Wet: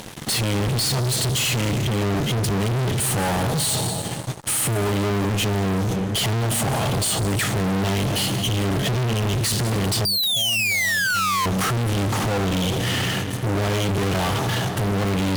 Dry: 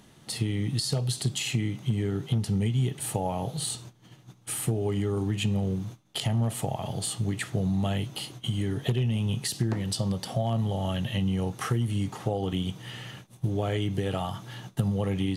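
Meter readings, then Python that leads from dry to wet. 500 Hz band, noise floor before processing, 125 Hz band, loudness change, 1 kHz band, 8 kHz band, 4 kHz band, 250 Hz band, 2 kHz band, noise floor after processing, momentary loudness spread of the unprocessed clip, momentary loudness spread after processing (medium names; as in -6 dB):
+7.5 dB, -55 dBFS, +5.0 dB, +8.0 dB, +11.5 dB, +11.5 dB, +12.0 dB, +5.5 dB, +16.0 dB, -27 dBFS, 7 LU, 4 LU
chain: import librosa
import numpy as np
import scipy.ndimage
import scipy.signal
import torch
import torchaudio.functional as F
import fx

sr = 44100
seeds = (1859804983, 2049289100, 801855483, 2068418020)

y = fx.rev_plate(x, sr, seeds[0], rt60_s=2.6, hf_ratio=0.5, predelay_ms=115, drr_db=13.0)
y = fx.spec_paint(y, sr, seeds[1], shape='fall', start_s=10.05, length_s=1.41, low_hz=1000.0, high_hz=4800.0, level_db=-19.0)
y = fx.fuzz(y, sr, gain_db=47.0, gate_db=-54.0)
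y = y * 10.0 ** (-7.5 / 20.0)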